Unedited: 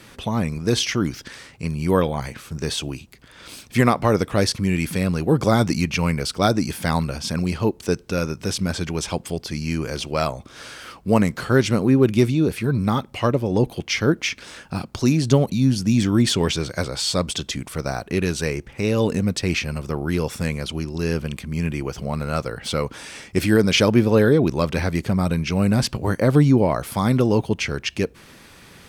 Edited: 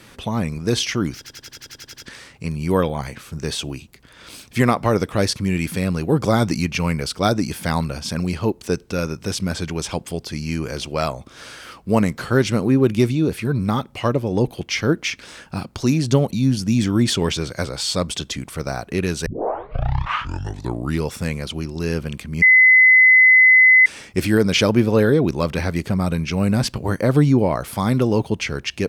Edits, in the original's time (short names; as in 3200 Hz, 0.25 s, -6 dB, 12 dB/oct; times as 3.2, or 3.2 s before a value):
1.17 stutter 0.09 s, 10 plays
18.45 tape start 1.84 s
21.61–23.05 bleep 2030 Hz -7.5 dBFS